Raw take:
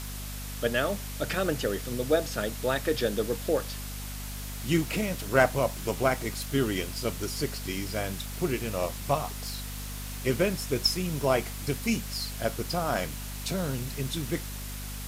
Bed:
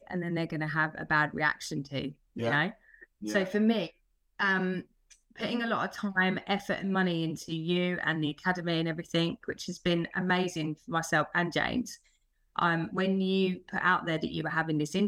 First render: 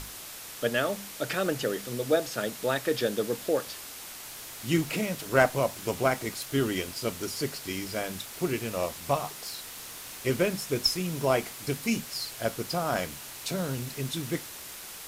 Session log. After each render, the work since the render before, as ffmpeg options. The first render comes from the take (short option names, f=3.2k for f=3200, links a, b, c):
-af "bandreject=f=50:t=h:w=6,bandreject=f=100:t=h:w=6,bandreject=f=150:t=h:w=6,bandreject=f=200:t=h:w=6,bandreject=f=250:t=h:w=6"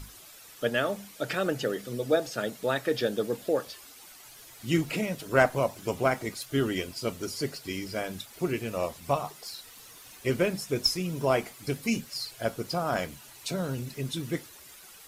-af "afftdn=nr=11:nf=-43"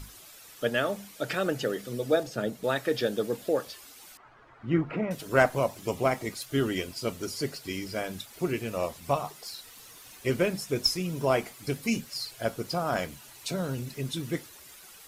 -filter_complex "[0:a]asettb=1/sr,asplit=3[a][b][c];[a]atrim=end=2.234[d];[b]atrim=start=2.23:end=2.64,asetpts=PTS-STARTPTS,afade=t=in:d=0.004:c=qsin,afade=t=out:st=0.406:d=0.004:c=qsin,tiltshelf=f=640:g=5[e];[c]atrim=start=2.636[f];[d][e]acrossfade=d=0.004:c1=hsin:c2=qsin[g];[g][f]acrossfade=d=0.004:c1=qsin:c2=hsin,asettb=1/sr,asplit=3[h][i][j];[h]atrim=end=4.174[k];[i]atrim=start=4.17:end=5.11,asetpts=PTS-STARTPTS,afade=t=in:d=0.004:c=qsin,afade=t=out:st=0.936:d=0.004:c=qsin,lowpass=f=1.3k:t=q:w=1.9[l];[j]atrim=start=5.106[m];[k][l]acrossfade=d=0.004:c1=hsin:c2=qsin[n];[n][m]acrossfade=d=0.004:c1=qsin:c2=hsin,asettb=1/sr,asplit=3[o][p][q];[o]atrim=end=5.794[r];[p]atrim=start=5.79:end=6.27,asetpts=PTS-STARTPTS,afade=t=in:d=0.004:c=qsin,afade=t=out:st=0.476:d=0.004:c=qsin,bandreject=f=1.5k:w=6.8[s];[q]atrim=start=6.266[t];[r][s]acrossfade=d=0.004:c1=hsin:c2=qsin[u];[u][t]acrossfade=d=0.004:c1=qsin:c2=hsin"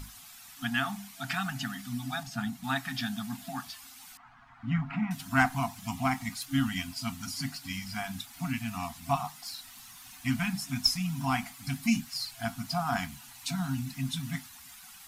-af "afftfilt=real='re*(1-between(b*sr/4096,270,670))':imag='im*(1-between(b*sr/4096,270,670))':win_size=4096:overlap=0.75,equalizer=f=310:t=o:w=0.41:g=11.5"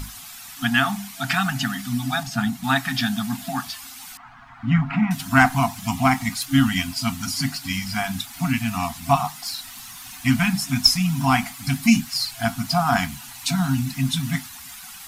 -af "volume=10.5dB,alimiter=limit=-2dB:level=0:latency=1"